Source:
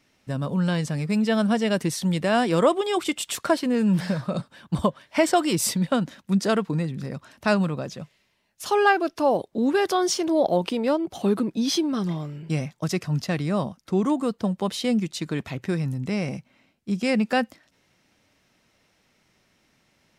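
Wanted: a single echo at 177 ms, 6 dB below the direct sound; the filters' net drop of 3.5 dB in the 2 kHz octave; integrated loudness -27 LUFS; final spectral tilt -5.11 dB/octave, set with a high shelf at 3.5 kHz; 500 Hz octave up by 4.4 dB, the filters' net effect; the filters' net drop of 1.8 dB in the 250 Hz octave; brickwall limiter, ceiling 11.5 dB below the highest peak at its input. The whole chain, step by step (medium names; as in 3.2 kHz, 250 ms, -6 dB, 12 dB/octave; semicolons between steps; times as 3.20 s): peaking EQ 250 Hz -4.5 dB; peaking EQ 500 Hz +7 dB; peaking EQ 2 kHz -6 dB; treble shelf 3.5 kHz +3 dB; peak limiter -15.5 dBFS; delay 177 ms -6 dB; trim -2 dB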